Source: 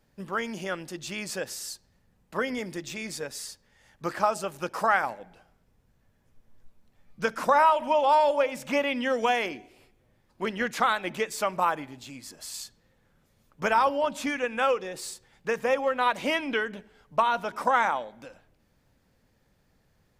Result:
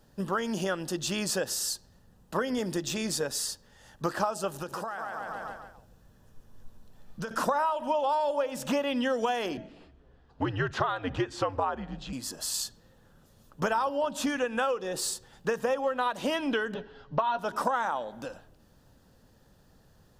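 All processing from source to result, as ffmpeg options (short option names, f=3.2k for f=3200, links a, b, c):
-filter_complex "[0:a]asettb=1/sr,asplit=3[a][b][c];[a]atrim=end=4.544[d];[b]atrim=start=4.54:end=7.31,asetpts=PTS-STARTPTS,afade=t=in:d=0.004:c=qsin,afade=t=out:st=2.766:d=0.004:c=qsin,aecho=1:1:142|284|426|568|710:0.562|0.242|0.104|0.0447|0.0192,atrim=end_sample=122157,acompressor=threshold=-38dB:ratio=12:attack=3.2:release=140:knee=1:detection=peak[e];[c]atrim=start=7.306[f];[d][e]acrossfade=d=0.004:c1=hsin:c2=qsin[g];[g][f]acrossfade=d=0.004:c1=qsin:c2=hsin,asettb=1/sr,asplit=3[h][i][j];[h]atrim=end=9.574[k];[i]atrim=start=9.57:end=12.13,asetpts=PTS-STARTPTS,afade=t=in:d=0.004:c=qsin,afade=t=out:st=2.556:d=0.004:c=qsin,lowpass=3.4k,afreqshift=-88[l];[j]atrim=start=12.126[m];[k][l]acrossfade=d=0.004:c1=hsin:c2=qsin[n];[n][m]acrossfade=d=0.004:c1=qsin:c2=hsin,asettb=1/sr,asplit=3[o][p][q];[o]atrim=end=16.744[r];[p]atrim=start=16.74:end=17.39,asetpts=PTS-STARTPTS,afade=t=in:d=0.004:c=qsin,afade=t=out:st=0.646:d=0.004:c=qsin,lowpass=f=4.6k:w=0.5412,lowpass=f=4.6k:w=1.3066,aecho=1:1:7.3:0.68,atrim=end_sample=28665[s];[q]atrim=start=17.386[t];[r][s]acrossfade=d=0.004:c1=hsin:c2=qsin[u];[u][t]acrossfade=d=0.004:c1=qsin:c2=hsin,equalizer=f=2.2k:w=4.8:g=-15,acompressor=threshold=-33dB:ratio=5,volume=7dB"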